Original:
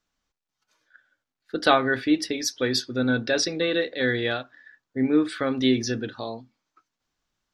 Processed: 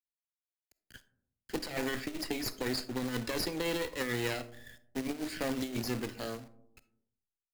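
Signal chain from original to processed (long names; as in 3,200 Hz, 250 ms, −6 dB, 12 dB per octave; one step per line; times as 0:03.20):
lower of the sound and its delayed copy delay 0.44 ms
compressor whose output falls as the input rises −25 dBFS, ratio −0.5
log-companded quantiser 4 bits
comb and all-pass reverb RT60 0.7 s, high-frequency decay 0.3×, pre-delay 5 ms, DRR 15 dB
multiband upward and downward compressor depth 40%
level −8.5 dB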